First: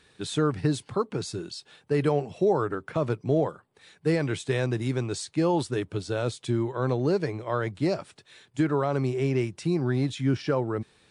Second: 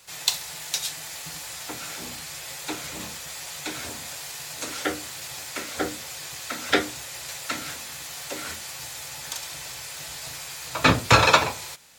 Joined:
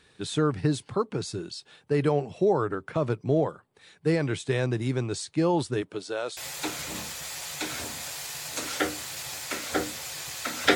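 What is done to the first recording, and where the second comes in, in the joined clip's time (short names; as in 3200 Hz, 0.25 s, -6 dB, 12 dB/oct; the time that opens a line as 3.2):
first
5.81–6.37 HPF 200 Hz -> 670 Hz
6.37 switch to second from 2.42 s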